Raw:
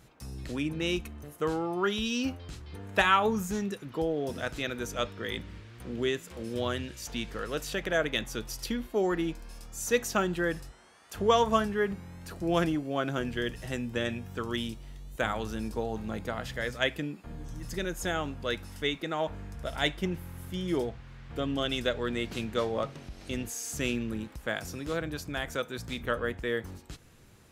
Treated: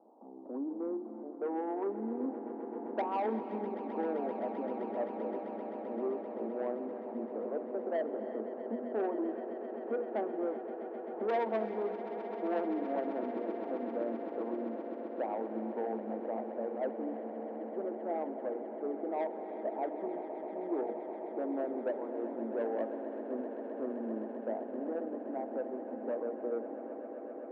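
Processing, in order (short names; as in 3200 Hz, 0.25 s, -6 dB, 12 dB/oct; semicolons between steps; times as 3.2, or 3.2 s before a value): steep low-pass 880 Hz 48 dB/oct; tilt +3 dB/oct; notches 60/120/180/240/300/360/420/480 Hz; in parallel at +1 dB: compressor, threshold -44 dBFS, peak gain reduction 19.5 dB; on the sum: soft clip -27 dBFS, distortion -14 dB; Chebyshev high-pass 220 Hz, order 6; on a send: swelling echo 0.13 s, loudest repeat 8, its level -15 dB; on the sum: non-linear reverb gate 0.39 s rising, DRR 11.5 dB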